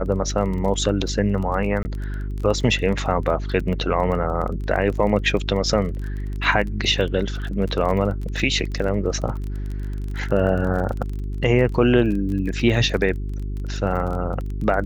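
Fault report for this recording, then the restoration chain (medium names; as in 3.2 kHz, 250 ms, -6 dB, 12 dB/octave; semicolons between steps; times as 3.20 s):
crackle 25 per s -28 dBFS
hum 50 Hz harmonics 8 -27 dBFS
1.83–1.85 s: dropout 20 ms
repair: de-click; de-hum 50 Hz, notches 8; interpolate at 1.83 s, 20 ms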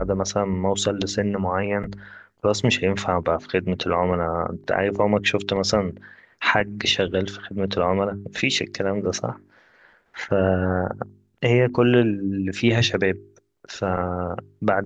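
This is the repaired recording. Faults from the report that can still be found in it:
nothing left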